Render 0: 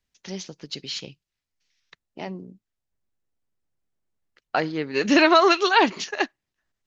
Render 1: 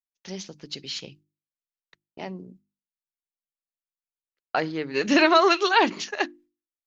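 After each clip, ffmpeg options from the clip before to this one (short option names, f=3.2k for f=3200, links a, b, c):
-af "agate=range=-33dB:threshold=-46dB:ratio=3:detection=peak,bandreject=f=50:t=h:w=6,bandreject=f=100:t=h:w=6,bandreject=f=150:t=h:w=6,bandreject=f=200:t=h:w=6,bandreject=f=250:t=h:w=6,bandreject=f=300:t=h:w=6,bandreject=f=350:t=h:w=6,volume=-1.5dB"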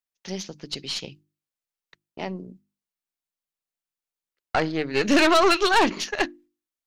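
-af "aeval=exprs='(tanh(8.91*val(0)+0.55)-tanh(0.55))/8.91':c=same,volume=5.5dB"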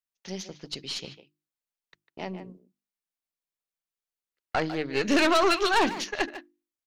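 -filter_complex "[0:a]asplit=2[a][b];[b]adelay=150,highpass=300,lowpass=3.4k,asoftclip=type=hard:threshold=-19dB,volume=-10dB[c];[a][c]amix=inputs=2:normalize=0,volume=-4dB"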